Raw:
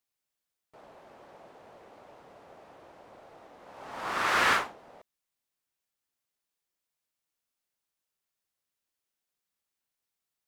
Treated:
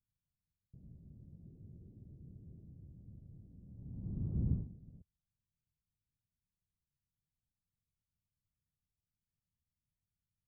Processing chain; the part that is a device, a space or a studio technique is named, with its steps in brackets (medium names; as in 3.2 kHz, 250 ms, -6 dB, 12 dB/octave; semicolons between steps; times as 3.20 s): the neighbour's flat through the wall (low-pass 160 Hz 24 dB/octave; peaking EQ 84 Hz +3 dB); 1.46–2.71 s: peaking EQ 360 Hz +6.5 dB 0.56 oct; trim +14.5 dB